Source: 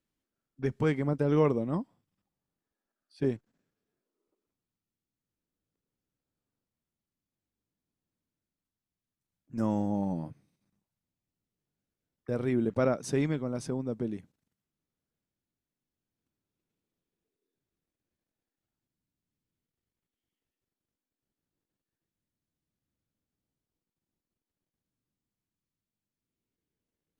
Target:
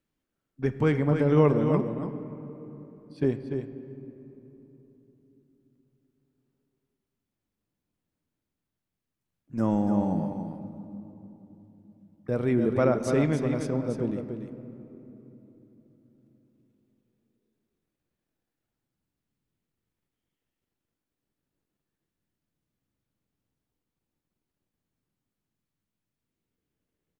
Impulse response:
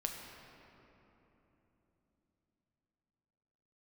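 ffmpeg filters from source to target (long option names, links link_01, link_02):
-filter_complex "[0:a]aecho=1:1:291:0.447,asplit=2[link_01][link_02];[1:a]atrim=start_sample=2205,lowpass=3900[link_03];[link_02][link_03]afir=irnorm=-1:irlink=0,volume=-4dB[link_04];[link_01][link_04]amix=inputs=2:normalize=0"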